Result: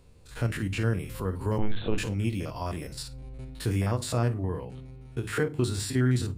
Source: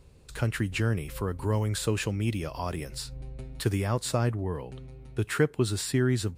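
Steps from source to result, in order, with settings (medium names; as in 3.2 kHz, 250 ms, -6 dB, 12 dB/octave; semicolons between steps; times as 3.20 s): spectrogram pixelated in time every 50 ms; 1.58–1.98 s: LPC vocoder at 8 kHz pitch kept; on a send at -10 dB: reverberation RT60 0.30 s, pre-delay 4 ms; on the sum: endings held to a fixed fall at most 230 dB/s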